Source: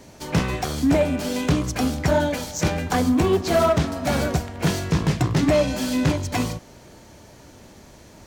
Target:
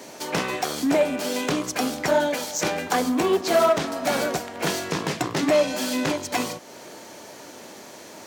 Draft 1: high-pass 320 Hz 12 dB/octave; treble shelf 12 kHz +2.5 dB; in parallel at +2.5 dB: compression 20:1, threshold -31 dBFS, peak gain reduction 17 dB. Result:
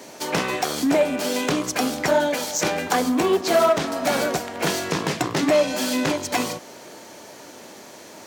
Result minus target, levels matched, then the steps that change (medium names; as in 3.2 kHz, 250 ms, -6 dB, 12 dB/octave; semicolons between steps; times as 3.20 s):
compression: peak gain reduction -9.5 dB
change: compression 20:1, threshold -41 dBFS, peak gain reduction 26.5 dB